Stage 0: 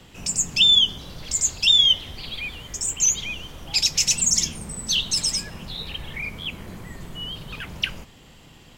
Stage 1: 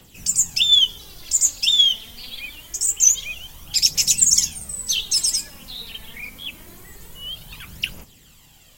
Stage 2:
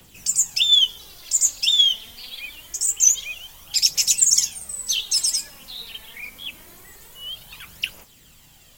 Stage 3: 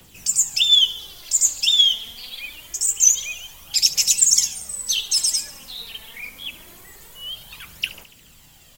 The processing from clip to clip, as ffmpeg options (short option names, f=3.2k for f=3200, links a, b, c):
-af "aemphasis=mode=production:type=75fm,aphaser=in_gain=1:out_gain=1:delay=4.6:decay=0.5:speed=0.25:type=triangular,volume=-7dB"
-filter_complex "[0:a]acrossover=split=420[a][b];[a]acompressor=threshold=-48dB:ratio=6[c];[c][b]amix=inputs=2:normalize=0,acrusher=bits=8:mix=0:aa=0.000001,volume=-1dB"
-af "aecho=1:1:71|142|213|284|355|426:0.141|0.0833|0.0492|0.029|0.0171|0.0101,volume=1dB"